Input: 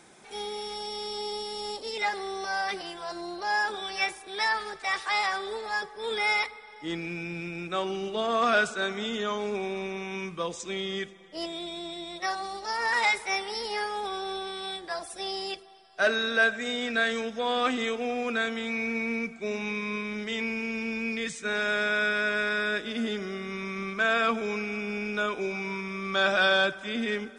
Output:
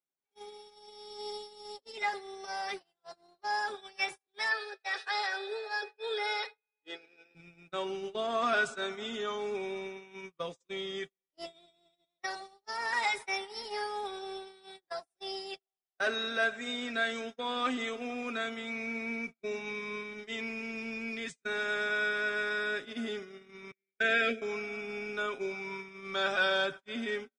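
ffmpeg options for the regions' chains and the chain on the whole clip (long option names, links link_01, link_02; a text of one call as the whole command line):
ffmpeg -i in.wav -filter_complex "[0:a]asettb=1/sr,asplit=3[link_01][link_02][link_03];[link_01]atrim=end=4.514[link_04];[link_02]atrim=start=4.51:end=7.35,asetpts=PTS-STARTPTS,afade=type=in:duration=0.004:curve=qsin,afade=type=out:start_time=2.836:duration=0.004:curve=qsin,aeval=exprs='val(0)+0.0251*sin(2*PI*2500*n/s)':channel_layout=same,highpass=frequency=360:width=0.5412,highpass=frequency=360:width=1.3066,equalizer=frequency=470:width_type=q:width=4:gain=6,equalizer=frequency=1100:width_type=q:width=4:gain=-8,equalizer=frequency=1600:width_type=q:width=4:gain=7,equalizer=frequency=2300:width_type=q:width=4:gain=-7,equalizer=frequency=4200:width_type=q:width=4:gain=6,equalizer=frequency=7100:width_type=q:width=4:gain=-8,lowpass=frequency=8500:width=0.5412,lowpass=frequency=8500:width=1.3066[link_05];[link_03]atrim=start=7.346[link_06];[link_04][link_05]acrossfade=duration=0.004:curve1=hsin:curve2=qsin[link_07];[link_07][link_06]acrossfade=duration=0.004:curve1=qsin:curve2=hsin,asettb=1/sr,asplit=3[link_08][link_09][link_10];[link_08]atrim=end=23.714[link_11];[link_09]atrim=start=23.71:end=24.42,asetpts=PTS-STARTPTS,afade=type=in:duration=0.004:curve=qsin,afade=type=out:start_time=0.706:duration=0.004:curve=qsin,agate=range=-33dB:threshold=-24dB:ratio=3:release=100:detection=peak,asuperstop=centerf=960:order=8:qfactor=0.94,equalizer=frequency=1000:width=0.39:gain=12.5[link_12];[link_10]atrim=start=24.416[link_13];[link_11][link_12]acrossfade=duration=0.004:curve1=hsin:curve2=qsin[link_14];[link_14][link_13]acrossfade=duration=0.004:curve1=qsin:curve2=hsin,agate=range=-41dB:threshold=-33dB:ratio=16:detection=peak,aecho=1:1:7.4:0.51,volume=-6.5dB" out.wav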